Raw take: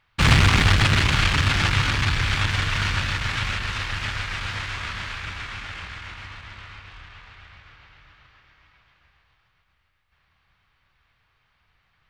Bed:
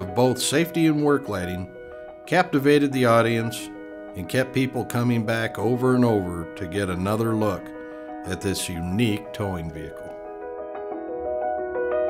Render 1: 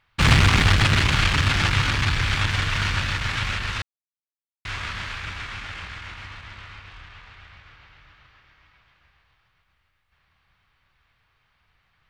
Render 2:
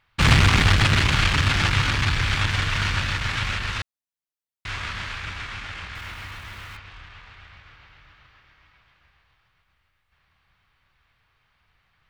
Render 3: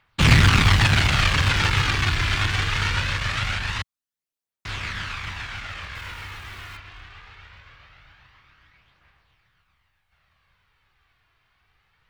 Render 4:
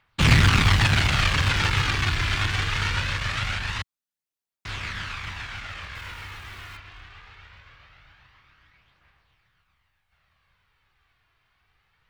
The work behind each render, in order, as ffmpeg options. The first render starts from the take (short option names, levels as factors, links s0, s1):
-filter_complex "[0:a]asplit=3[s0][s1][s2];[s0]atrim=end=3.82,asetpts=PTS-STARTPTS,afade=t=out:st=3.816:d=0.004:c=hsin[s3];[s1]atrim=start=3.82:end=4.65,asetpts=PTS-STARTPTS,volume=0[s4];[s2]atrim=start=4.65,asetpts=PTS-STARTPTS,afade=t=in:d=0.004:c=hsin[s5];[s3][s4][s5]concat=n=3:v=0:a=1"
-filter_complex "[0:a]asettb=1/sr,asplit=3[s0][s1][s2];[s0]atrim=end=5.954[s3];[s1]atrim=start=5.95:end=6.77,asetpts=PTS-STARTPTS,afade=t=in:d=0.004:c=qsin,afade=t=out:st=0.816:d=0.004:c=qsin,aeval=exprs='val(0)+0.5*0.00668*sgn(val(0))':c=same[s4];[s2]atrim=start=6.766[s5];[s3][s4]acrossfade=d=0.004:c1=hsin:c2=qsin[s6];[s6][s5]acrossfade=d=0.004:c1=qsin:c2=hsin"
-filter_complex "[0:a]acrossover=split=100[s0][s1];[s0]acrusher=samples=30:mix=1:aa=0.000001:lfo=1:lforange=48:lforate=0.23[s2];[s1]aphaser=in_gain=1:out_gain=1:delay=3:decay=0.33:speed=0.22:type=triangular[s3];[s2][s3]amix=inputs=2:normalize=0"
-af "volume=0.794"